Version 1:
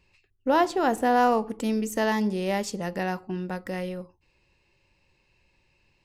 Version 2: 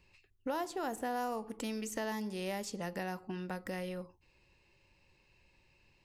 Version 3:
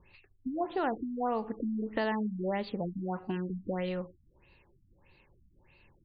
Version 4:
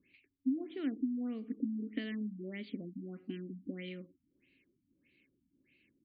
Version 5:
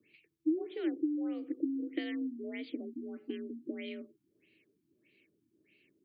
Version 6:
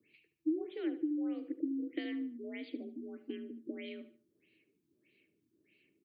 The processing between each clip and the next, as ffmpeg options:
ffmpeg -i in.wav -filter_complex "[0:a]acrossover=split=780|6800[link_01][link_02][link_03];[link_01]acompressor=threshold=-38dB:ratio=4[link_04];[link_02]acompressor=threshold=-41dB:ratio=4[link_05];[link_03]acompressor=threshold=-48dB:ratio=4[link_06];[link_04][link_05][link_06]amix=inputs=3:normalize=0,volume=-1.5dB" out.wav
ffmpeg -i in.wav -af "afftfilt=real='re*lt(b*sr/1024,280*pow(4900/280,0.5+0.5*sin(2*PI*1.6*pts/sr)))':imag='im*lt(b*sr/1024,280*pow(4900/280,0.5+0.5*sin(2*PI*1.6*pts/sr)))':win_size=1024:overlap=0.75,volume=6.5dB" out.wav
ffmpeg -i in.wav -filter_complex "[0:a]asplit=3[link_01][link_02][link_03];[link_01]bandpass=frequency=270:width_type=q:width=8,volume=0dB[link_04];[link_02]bandpass=frequency=2290:width_type=q:width=8,volume=-6dB[link_05];[link_03]bandpass=frequency=3010:width_type=q:width=8,volume=-9dB[link_06];[link_04][link_05][link_06]amix=inputs=3:normalize=0,volume=6.5dB" out.wav
ffmpeg -i in.wav -af "afreqshift=52,volume=2dB" out.wav
ffmpeg -i in.wav -af "aecho=1:1:74|148|222:0.211|0.0697|0.023,volume=-2.5dB" out.wav

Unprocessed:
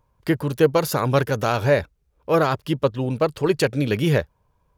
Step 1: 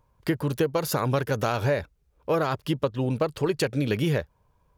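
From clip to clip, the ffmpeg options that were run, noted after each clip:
ffmpeg -i in.wav -af "acompressor=threshold=-21dB:ratio=5" out.wav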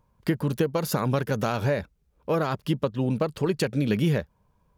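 ffmpeg -i in.wav -af "equalizer=frequency=200:width_type=o:width=0.61:gain=8.5,volume=-1.5dB" out.wav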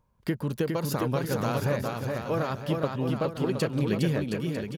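ffmpeg -i in.wav -af "aecho=1:1:410|717.5|948.1|1121|1251:0.631|0.398|0.251|0.158|0.1,volume=-4dB" out.wav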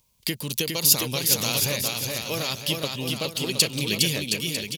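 ffmpeg -i in.wav -af "aexciter=amount=9:drive=6.7:freq=2300,volume=-3dB" out.wav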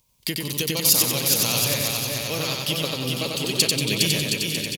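ffmpeg -i in.wav -af "aecho=1:1:93|186|279|372|465|558:0.708|0.326|0.15|0.0689|0.0317|0.0146" out.wav

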